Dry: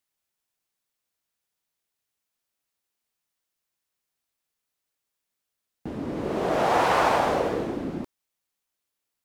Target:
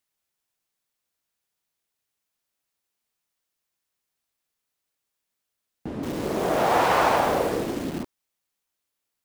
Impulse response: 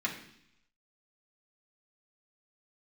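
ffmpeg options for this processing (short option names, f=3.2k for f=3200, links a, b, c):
-filter_complex "[0:a]asettb=1/sr,asplit=3[a][b][c];[a]atrim=end=6.034[d];[b]atrim=start=6.03:end=8.03,asetpts=PTS-STARTPTS,afade=t=in:d=0.004:c=qsin,afade=t=out:st=1.996:d=0.004:c=qsin,acrusher=bits=7:dc=4:mix=0:aa=0.000001[e];[c]atrim=start=8.026[f];[d][e]acrossfade=d=0.004:c1=hsin:c2=qsin[g];[g][f]acrossfade=d=0.004:c1=qsin:c2=hsin,volume=1dB"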